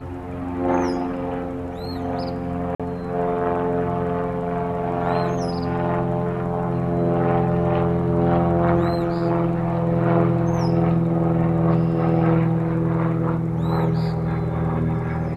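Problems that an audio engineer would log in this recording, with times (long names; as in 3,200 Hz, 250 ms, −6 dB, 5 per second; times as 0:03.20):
0:02.75–0:02.80: drop-out 46 ms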